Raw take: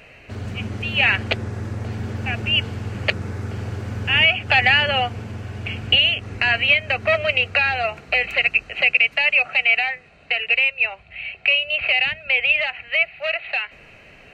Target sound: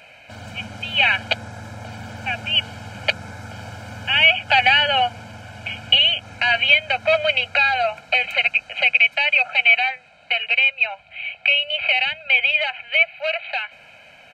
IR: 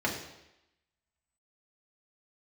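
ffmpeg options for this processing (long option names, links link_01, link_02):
-af "highpass=frequency=510:poles=1,equalizer=frequency=1900:width=4:gain=-4.5,aecho=1:1:1.3:0.94"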